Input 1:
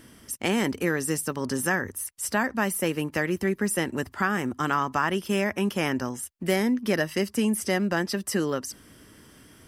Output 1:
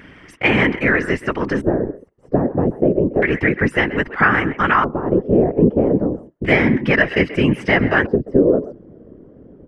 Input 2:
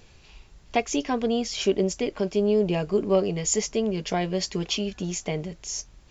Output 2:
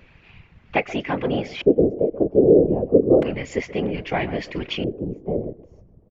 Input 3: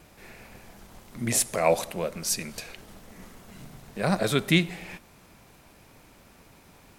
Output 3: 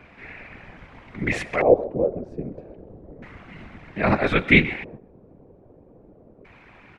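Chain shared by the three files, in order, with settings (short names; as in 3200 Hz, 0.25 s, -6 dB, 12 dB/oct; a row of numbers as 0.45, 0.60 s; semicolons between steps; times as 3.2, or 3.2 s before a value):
speakerphone echo 0.13 s, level -14 dB; LFO low-pass square 0.31 Hz 450–2200 Hz; whisperiser; normalise peaks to -1.5 dBFS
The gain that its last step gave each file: +8.0, +0.5, +3.0 dB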